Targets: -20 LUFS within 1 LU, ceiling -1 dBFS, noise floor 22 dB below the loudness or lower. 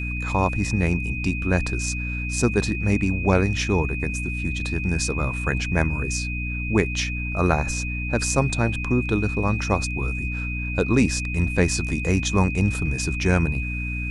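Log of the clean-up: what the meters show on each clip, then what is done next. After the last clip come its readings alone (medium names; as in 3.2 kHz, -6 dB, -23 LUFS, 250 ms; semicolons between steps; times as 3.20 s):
hum 60 Hz; highest harmonic 300 Hz; hum level -26 dBFS; steady tone 2.5 kHz; tone level -30 dBFS; loudness -23.5 LUFS; peak level -4.5 dBFS; loudness target -20.0 LUFS
-> hum notches 60/120/180/240/300 Hz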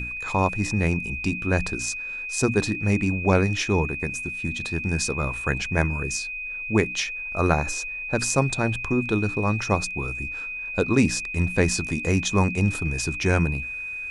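hum not found; steady tone 2.5 kHz; tone level -30 dBFS
-> band-stop 2.5 kHz, Q 30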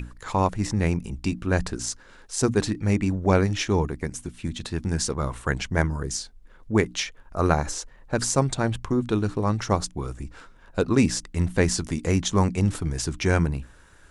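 steady tone not found; loudness -25.5 LUFS; peak level -5.5 dBFS; loudness target -20.0 LUFS
-> trim +5.5 dB; peak limiter -1 dBFS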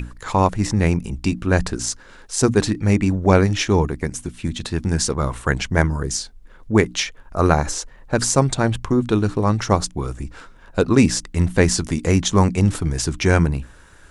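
loudness -20.0 LUFS; peak level -1.0 dBFS; noise floor -45 dBFS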